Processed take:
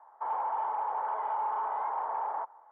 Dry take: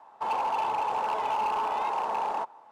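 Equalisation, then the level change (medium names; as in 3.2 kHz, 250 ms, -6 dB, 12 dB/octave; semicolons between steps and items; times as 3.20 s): Savitzky-Golay filter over 41 samples; high-pass 700 Hz 12 dB/octave; distance through air 460 m; 0.0 dB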